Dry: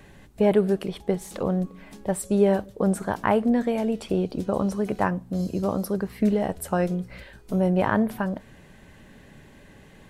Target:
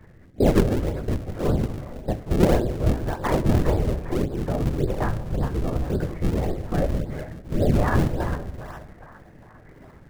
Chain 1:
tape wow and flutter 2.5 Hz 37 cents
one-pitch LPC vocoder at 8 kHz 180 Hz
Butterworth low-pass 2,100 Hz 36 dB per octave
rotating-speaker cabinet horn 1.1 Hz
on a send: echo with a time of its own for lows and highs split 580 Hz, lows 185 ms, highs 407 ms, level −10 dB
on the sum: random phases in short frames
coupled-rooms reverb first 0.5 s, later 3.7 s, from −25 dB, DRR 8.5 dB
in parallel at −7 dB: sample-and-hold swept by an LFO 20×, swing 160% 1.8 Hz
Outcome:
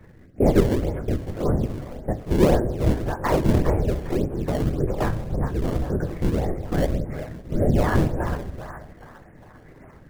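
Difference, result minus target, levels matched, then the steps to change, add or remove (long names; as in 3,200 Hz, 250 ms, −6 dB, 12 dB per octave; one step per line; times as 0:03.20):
sample-and-hold swept by an LFO: distortion −7 dB
change: sample-and-hold swept by an LFO 50×, swing 160% 1.8 Hz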